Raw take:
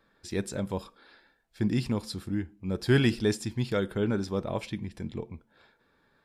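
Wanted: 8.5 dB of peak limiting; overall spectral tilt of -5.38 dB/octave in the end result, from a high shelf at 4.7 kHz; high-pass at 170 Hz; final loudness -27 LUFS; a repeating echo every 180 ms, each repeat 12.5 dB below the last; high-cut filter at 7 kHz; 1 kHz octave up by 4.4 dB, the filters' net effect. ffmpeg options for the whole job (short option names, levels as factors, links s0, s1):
-af "highpass=170,lowpass=7000,equalizer=f=1000:t=o:g=6,highshelf=f=4700:g=-6,alimiter=limit=0.106:level=0:latency=1,aecho=1:1:180|360|540:0.237|0.0569|0.0137,volume=2.24"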